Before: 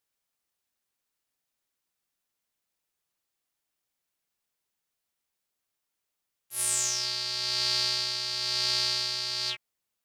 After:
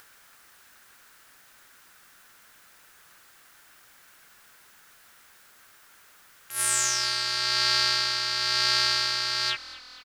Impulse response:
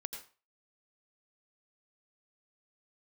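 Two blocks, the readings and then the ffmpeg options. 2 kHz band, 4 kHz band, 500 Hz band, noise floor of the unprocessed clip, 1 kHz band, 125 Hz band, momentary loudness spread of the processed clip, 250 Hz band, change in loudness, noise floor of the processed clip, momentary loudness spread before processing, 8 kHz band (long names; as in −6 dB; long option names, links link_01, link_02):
+10.0 dB, +3.0 dB, +3.0 dB, −84 dBFS, +10.0 dB, +2.0 dB, 7 LU, can't be measured, +3.5 dB, −56 dBFS, 6 LU, +2.5 dB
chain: -filter_complex "[0:a]acompressor=mode=upward:threshold=-39dB:ratio=2.5,equalizer=frequency=1500:width_type=o:width=0.92:gain=12.5,asplit=2[link_01][link_02];[link_02]asplit=6[link_03][link_04][link_05][link_06][link_07][link_08];[link_03]adelay=234,afreqshift=-41,volume=-17.5dB[link_09];[link_04]adelay=468,afreqshift=-82,volume=-21.9dB[link_10];[link_05]adelay=702,afreqshift=-123,volume=-26.4dB[link_11];[link_06]adelay=936,afreqshift=-164,volume=-30.8dB[link_12];[link_07]adelay=1170,afreqshift=-205,volume=-35.2dB[link_13];[link_08]adelay=1404,afreqshift=-246,volume=-39.7dB[link_14];[link_09][link_10][link_11][link_12][link_13][link_14]amix=inputs=6:normalize=0[link_15];[link_01][link_15]amix=inputs=2:normalize=0,volume=2dB"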